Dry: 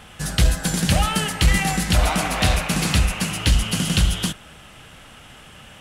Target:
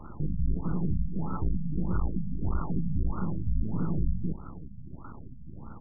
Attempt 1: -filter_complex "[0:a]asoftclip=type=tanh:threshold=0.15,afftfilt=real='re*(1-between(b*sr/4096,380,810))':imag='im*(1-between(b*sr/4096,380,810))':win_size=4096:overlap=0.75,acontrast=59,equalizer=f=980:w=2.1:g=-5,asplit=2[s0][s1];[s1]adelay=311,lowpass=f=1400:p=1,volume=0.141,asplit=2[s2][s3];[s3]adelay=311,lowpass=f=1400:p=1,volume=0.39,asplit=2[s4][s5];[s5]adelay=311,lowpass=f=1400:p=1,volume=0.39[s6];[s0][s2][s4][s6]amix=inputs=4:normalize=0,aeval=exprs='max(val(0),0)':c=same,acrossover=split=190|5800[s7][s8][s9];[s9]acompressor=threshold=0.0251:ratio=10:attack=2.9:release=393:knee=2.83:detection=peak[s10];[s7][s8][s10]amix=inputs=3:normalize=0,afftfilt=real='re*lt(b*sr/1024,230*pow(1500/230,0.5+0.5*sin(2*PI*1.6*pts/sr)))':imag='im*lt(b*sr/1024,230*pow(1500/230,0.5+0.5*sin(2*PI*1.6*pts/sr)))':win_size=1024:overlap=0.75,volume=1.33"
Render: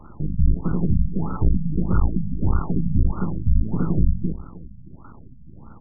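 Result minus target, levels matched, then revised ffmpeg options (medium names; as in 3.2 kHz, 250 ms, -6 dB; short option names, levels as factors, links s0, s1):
saturation: distortion -8 dB
-filter_complex "[0:a]asoftclip=type=tanh:threshold=0.0376,afftfilt=real='re*(1-between(b*sr/4096,380,810))':imag='im*(1-between(b*sr/4096,380,810))':win_size=4096:overlap=0.75,acontrast=59,equalizer=f=980:w=2.1:g=-5,asplit=2[s0][s1];[s1]adelay=311,lowpass=f=1400:p=1,volume=0.141,asplit=2[s2][s3];[s3]adelay=311,lowpass=f=1400:p=1,volume=0.39,asplit=2[s4][s5];[s5]adelay=311,lowpass=f=1400:p=1,volume=0.39[s6];[s0][s2][s4][s6]amix=inputs=4:normalize=0,aeval=exprs='max(val(0),0)':c=same,acrossover=split=190|5800[s7][s8][s9];[s9]acompressor=threshold=0.0251:ratio=10:attack=2.9:release=393:knee=2.83:detection=peak[s10];[s7][s8][s10]amix=inputs=3:normalize=0,afftfilt=real='re*lt(b*sr/1024,230*pow(1500/230,0.5+0.5*sin(2*PI*1.6*pts/sr)))':imag='im*lt(b*sr/1024,230*pow(1500/230,0.5+0.5*sin(2*PI*1.6*pts/sr)))':win_size=1024:overlap=0.75,volume=1.33"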